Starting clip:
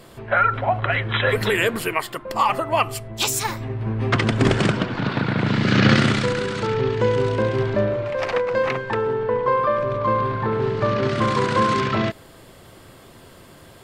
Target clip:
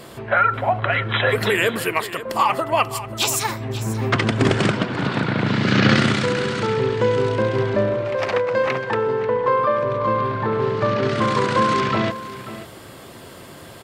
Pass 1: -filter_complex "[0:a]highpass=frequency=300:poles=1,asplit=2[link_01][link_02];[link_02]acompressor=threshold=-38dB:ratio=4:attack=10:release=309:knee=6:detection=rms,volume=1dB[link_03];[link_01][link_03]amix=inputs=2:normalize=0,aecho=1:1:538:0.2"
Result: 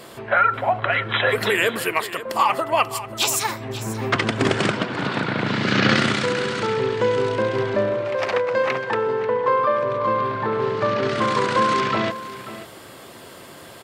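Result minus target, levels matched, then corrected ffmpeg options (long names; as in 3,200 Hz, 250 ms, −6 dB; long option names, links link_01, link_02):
125 Hz band −5.0 dB
-filter_complex "[0:a]highpass=frequency=99:poles=1,asplit=2[link_01][link_02];[link_02]acompressor=threshold=-38dB:ratio=4:attack=10:release=309:knee=6:detection=rms,volume=1dB[link_03];[link_01][link_03]amix=inputs=2:normalize=0,aecho=1:1:538:0.2"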